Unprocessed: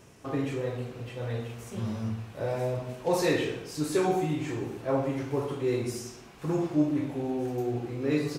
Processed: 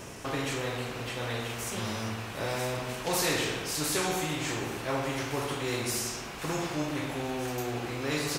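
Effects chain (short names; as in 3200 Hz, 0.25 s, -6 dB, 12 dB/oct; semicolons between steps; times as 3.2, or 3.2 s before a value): spectral compressor 2:1; gain -2.5 dB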